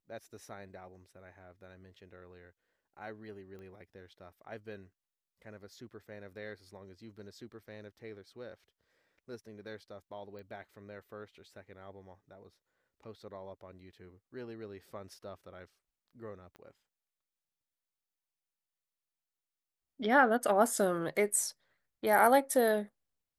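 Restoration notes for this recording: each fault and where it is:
3.59 pop -39 dBFS
10.39 pop -38 dBFS
16.56 pop -38 dBFS

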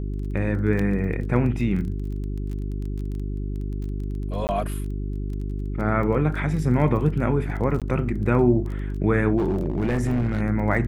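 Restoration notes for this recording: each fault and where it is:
crackle 19/s -32 dBFS
hum 50 Hz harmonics 8 -28 dBFS
0.79 gap 3.9 ms
4.47–4.49 gap 19 ms
7.8–7.82 gap 17 ms
9.37–10.42 clipped -18.5 dBFS

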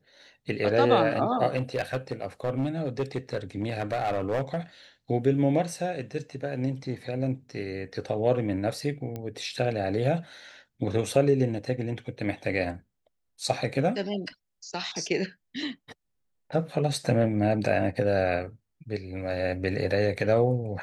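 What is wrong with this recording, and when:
1.56–4.57 clipped -22.5 dBFS
9.16 pop -22 dBFS

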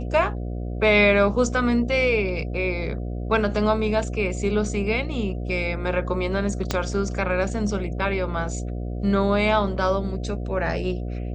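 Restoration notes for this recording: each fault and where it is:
buzz 60 Hz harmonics 12 -29 dBFS
6.71 pop -8 dBFS

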